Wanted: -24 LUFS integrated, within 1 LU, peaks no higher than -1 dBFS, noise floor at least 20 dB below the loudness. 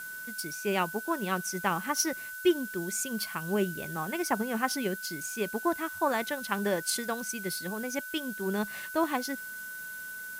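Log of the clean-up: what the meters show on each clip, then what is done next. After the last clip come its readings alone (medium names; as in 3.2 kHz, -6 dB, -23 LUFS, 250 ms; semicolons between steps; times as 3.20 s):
steady tone 1.5 kHz; tone level -39 dBFS; noise floor -41 dBFS; noise floor target -52 dBFS; loudness -31.5 LUFS; peak level -12.0 dBFS; loudness target -24.0 LUFS
-> band-stop 1.5 kHz, Q 30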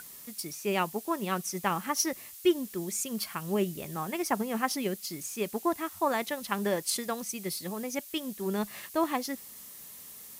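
steady tone not found; noise floor -48 dBFS; noise floor target -52 dBFS
-> noise reduction 6 dB, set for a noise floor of -48 dBFS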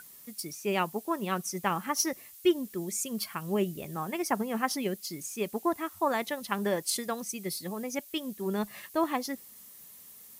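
noise floor -51 dBFS; noise floor target -52 dBFS
-> noise reduction 6 dB, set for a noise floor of -51 dBFS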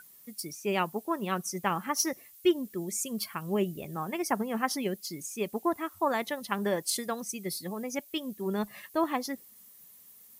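noise floor -55 dBFS; loudness -32.0 LUFS; peak level -12.5 dBFS; loudness target -24.0 LUFS
-> trim +8 dB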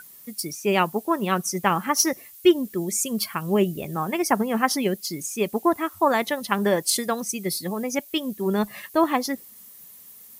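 loudness -24.0 LUFS; peak level -4.5 dBFS; noise floor -47 dBFS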